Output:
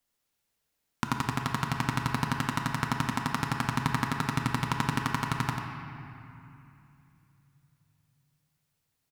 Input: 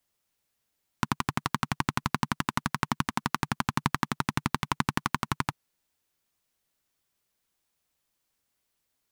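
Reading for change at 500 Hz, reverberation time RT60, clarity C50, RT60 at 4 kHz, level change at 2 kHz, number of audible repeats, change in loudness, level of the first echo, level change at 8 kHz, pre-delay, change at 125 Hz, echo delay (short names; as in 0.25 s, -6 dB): +0.5 dB, 2.7 s, 2.0 dB, 1.9 s, +0.5 dB, 1, 0.0 dB, -6.5 dB, -1.0 dB, 4 ms, +2.5 dB, 93 ms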